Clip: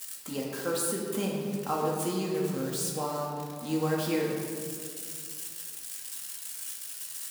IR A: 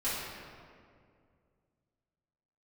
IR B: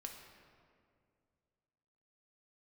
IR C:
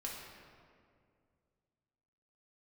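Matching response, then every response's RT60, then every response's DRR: C; 2.2, 2.3, 2.2 s; -13.0, 1.5, -4.0 dB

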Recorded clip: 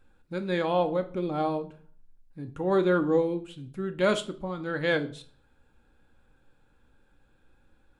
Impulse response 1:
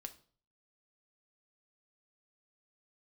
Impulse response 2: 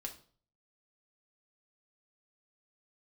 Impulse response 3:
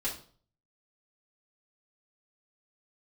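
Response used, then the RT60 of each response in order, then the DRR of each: 1; 0.45, 0.45, 0.45 s; 6.0, 1.0, -8.0 dB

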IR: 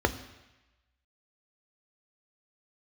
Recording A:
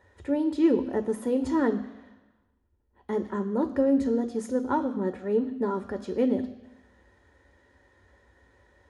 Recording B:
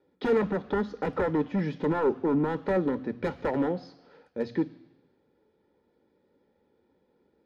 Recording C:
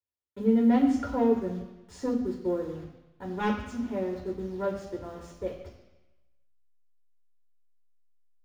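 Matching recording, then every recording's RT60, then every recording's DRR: A; 1.0, 1.0, 1.0 s; 8.0, 14.0, -1.0 dB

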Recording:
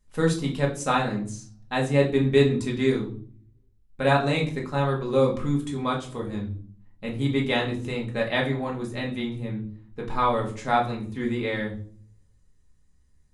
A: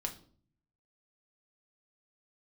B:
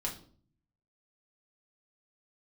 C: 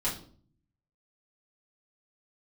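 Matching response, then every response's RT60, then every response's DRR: B; 0.50, 0.50, 0.50 s; 3.0, -2.0, -8.5 dB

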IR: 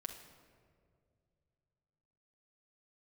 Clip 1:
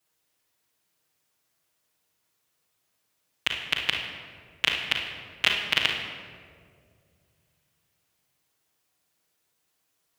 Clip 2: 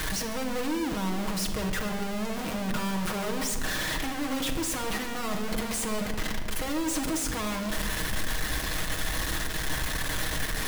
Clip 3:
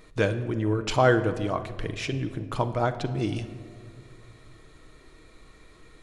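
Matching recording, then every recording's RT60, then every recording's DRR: 2; 2.1, 2.2, 2.3 s; -7.0, 1.5, 8.0 dB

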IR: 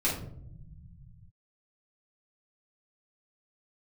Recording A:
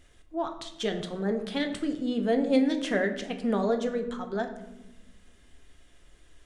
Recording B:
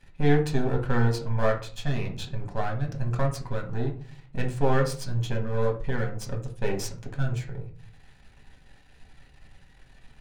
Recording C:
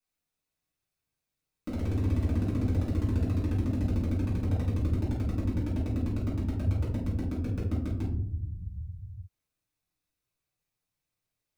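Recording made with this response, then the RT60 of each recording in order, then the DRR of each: C; 1.1, 0.45, 0.75 s; 5.0, 1.0, -7.5 dB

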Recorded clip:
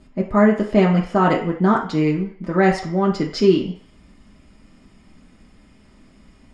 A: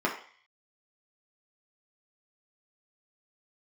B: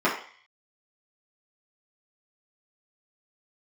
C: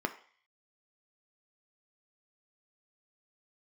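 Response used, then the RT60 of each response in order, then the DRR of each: A; 0.45, 0.45, 0.45 s; -3.5, -9.0, 6.0 dB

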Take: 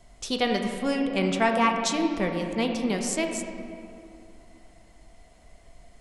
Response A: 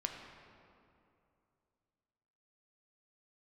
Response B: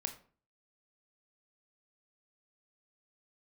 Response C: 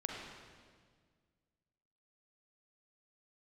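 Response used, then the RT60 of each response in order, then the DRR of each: A; 2.7, 0.45, 1.7 s; 2.0, 6.0, -1.0 dB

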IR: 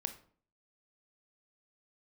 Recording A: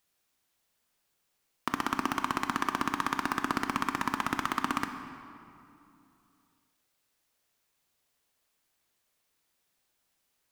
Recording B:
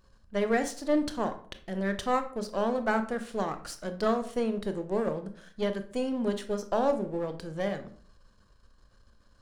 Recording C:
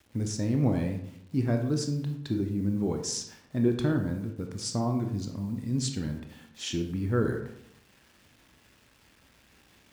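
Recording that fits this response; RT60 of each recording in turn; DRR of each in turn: B; 2.8, 0.50, 0.75 s; 6.5, 8.0, 4.0 dB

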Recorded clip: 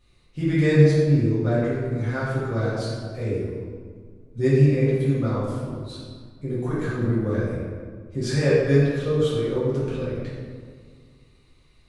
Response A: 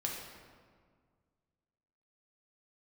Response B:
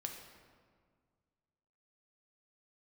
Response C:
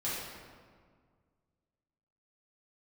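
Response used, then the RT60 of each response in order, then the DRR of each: C; 1.8, 1.8, 1.8 s; -1.5, 2.5, -10.0 dB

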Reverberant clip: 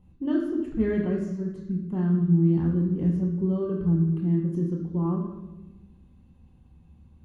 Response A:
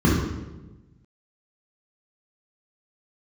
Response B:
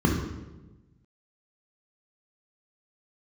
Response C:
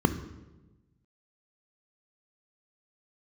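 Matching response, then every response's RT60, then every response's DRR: B; 1.1, 1.1, 1.1 s; -6.0, -0.5, 9.5 dB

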